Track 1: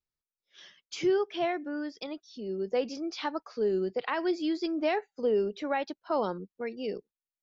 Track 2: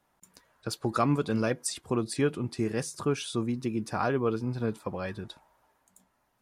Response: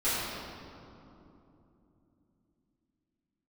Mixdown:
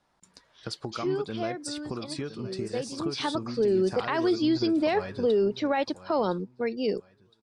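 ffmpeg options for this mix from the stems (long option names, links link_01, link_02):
-filter_complex "[0:a]acontrast=88,lowshelf=frequency=370:gain=4,volume=-2.5dB,afade=type=in:start_time=2.87:duration=0.49:silence=0.316228[link_01];[1:a]acompressor=threshold=-33dB:ratio=6,volume=1dB,asplit=2[link_02][link_03];[link_03]volume=-12.5dB,aecho=0:1:1013|2026|3039|4052:1|0.29|0.0841|0.0244[link_04];[link_01][link_02][link_04]amix=inputs=3:normalize=0,lowpass=frequency=7400:width=0.5412,lowpass=frequency=7400:width=1.3066,aexciter=amount=1.5:drive=5.1:freq=3800,alimiter=limit=-17dB:level=0:latency=1:release=17"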